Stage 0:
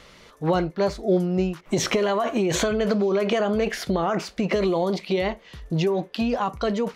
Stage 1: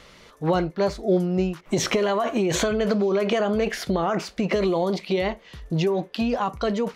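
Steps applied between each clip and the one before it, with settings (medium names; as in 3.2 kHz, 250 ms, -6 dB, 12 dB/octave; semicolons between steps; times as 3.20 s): no audible change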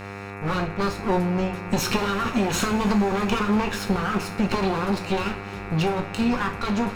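comb filter that takes the minimum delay 0.74 ms; mains buzz 100 Hz, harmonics 27, -38 dBFS -3 dB/octave; two-slope reverb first 0.33 s, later 4.6 s, from -20 dB, DRR 3.5 dB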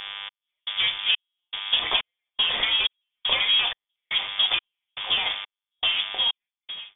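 fade out at the end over 0.86 s; trance gate "xxx....xx" 157 bpm -60 dB; frequency inversion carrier 3.5 kHz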